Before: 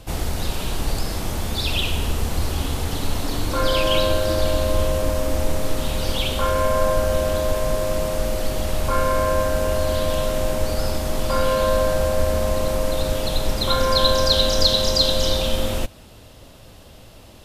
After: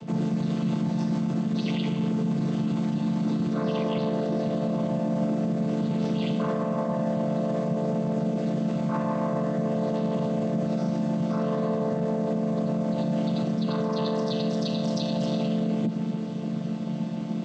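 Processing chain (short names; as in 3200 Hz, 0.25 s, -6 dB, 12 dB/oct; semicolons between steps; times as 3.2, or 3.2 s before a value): chord vocoder minor triad, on D3; bell 210 Hz +11.5 dB 1.1 oct; reverse; compressor 6:1, threshold -28 dBFS, peak gain reduction 15.5 dB; reverse; limiter -28 dBFS, peak gain reduction 9 dB; gain +9 dB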